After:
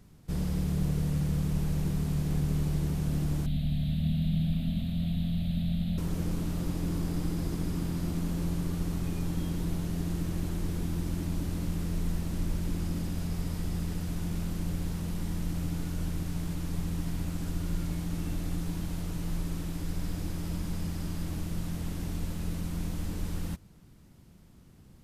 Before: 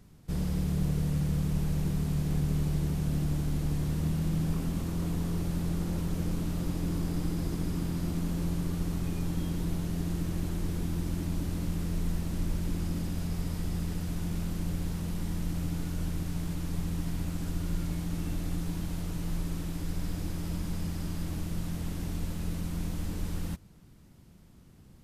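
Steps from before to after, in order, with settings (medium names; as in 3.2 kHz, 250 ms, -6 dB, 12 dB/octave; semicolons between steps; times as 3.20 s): 3.46–5.98 s: FFT filter 130 Hz 0 dB, 240 Hz +5 dB, 370 Hz -30 dB, 650 Hz 0 dB, 960 Hz -21 dB, 3.8 kHz +9 dB, 5.6 kHz -21 dB, 13 kHz -7 dB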